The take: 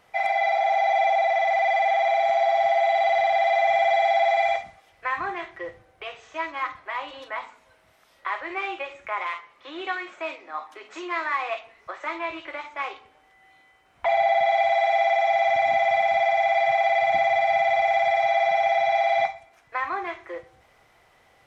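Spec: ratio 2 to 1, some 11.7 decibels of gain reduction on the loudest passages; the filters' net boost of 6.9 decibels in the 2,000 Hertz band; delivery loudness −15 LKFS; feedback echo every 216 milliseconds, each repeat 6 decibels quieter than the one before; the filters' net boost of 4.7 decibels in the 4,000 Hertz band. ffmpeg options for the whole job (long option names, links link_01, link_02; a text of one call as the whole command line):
ffmpeg -i in.wav -af "equalizer=frequency=2000:width_type=o:gain=6.5,equalizer=frequency=4000:width_type=o:gain=3.5,acompressor=threshold=-38dB:ratio=2,aecho=1:1:216|432|648|864|1080|1296:0.501|0.251|0.125|0.0626|0.0313|0.0157,volume=16dB" out.wav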